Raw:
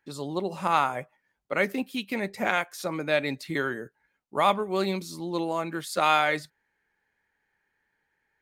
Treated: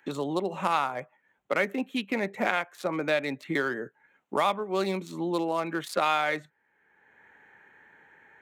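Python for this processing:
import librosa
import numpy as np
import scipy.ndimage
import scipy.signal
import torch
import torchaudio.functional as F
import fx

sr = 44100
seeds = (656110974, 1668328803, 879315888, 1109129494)

y = fx.wiener(x, sr, points=9)
y = scipy.signal.sosfilt(scipy.signal.butter(2, 86.0, 'highpass', fs=sr, output='sos'), y)
y = fx.low_shelf(y, sr, hz=160.0, db=-8.0)
y = fx.band_squash(y, sr, depth_pct=70)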